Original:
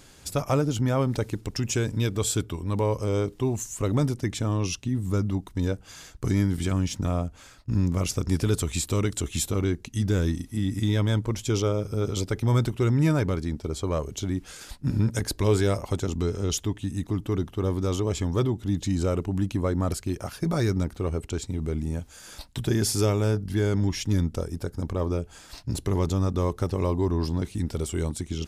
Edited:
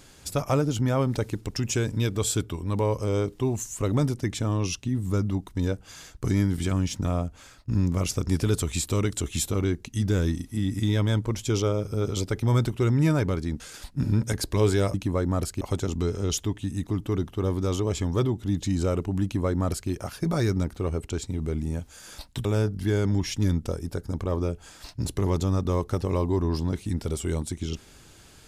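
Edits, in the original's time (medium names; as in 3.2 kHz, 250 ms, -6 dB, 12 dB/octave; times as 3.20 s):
13.60–14.47 s: delete
19.43–20.10 s: copy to 15.81 s
22.65–23.14 s: delete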